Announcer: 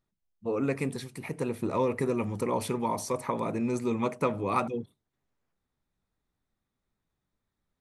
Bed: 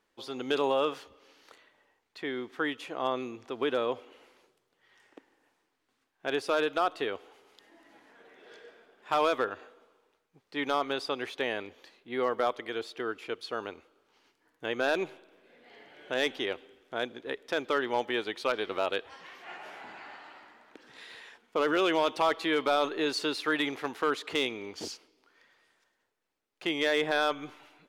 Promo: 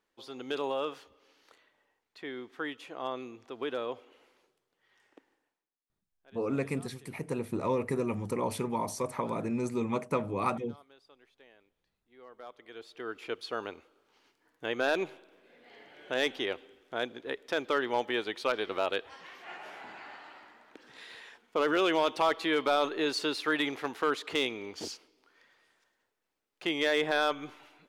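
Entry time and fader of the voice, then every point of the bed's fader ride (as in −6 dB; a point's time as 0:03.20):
5.90 s, −2.5 dB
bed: 0:05.33 −5.5 dB
0:05.83 −27.5 dB
0:12.07 −27.5 dB
0:13.26 −0.5 dB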